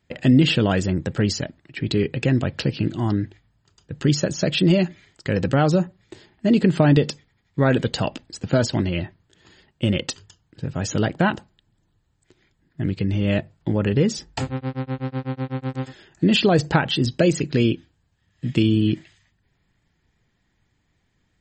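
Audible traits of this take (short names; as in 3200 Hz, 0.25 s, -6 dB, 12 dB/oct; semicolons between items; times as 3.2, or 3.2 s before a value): MP3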